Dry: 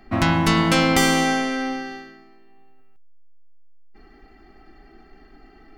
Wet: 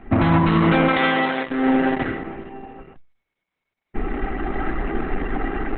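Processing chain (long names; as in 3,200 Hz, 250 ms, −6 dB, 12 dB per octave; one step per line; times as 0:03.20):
0:00.88–0:01.50: RIAA equalisation recording
automatic gain control gain up to 16 dB
high-frequency loss of the air 410 metres
boost into a limiter +16.5 dB
level −7 dB
Opus 8 kbit/s 48,000 Hz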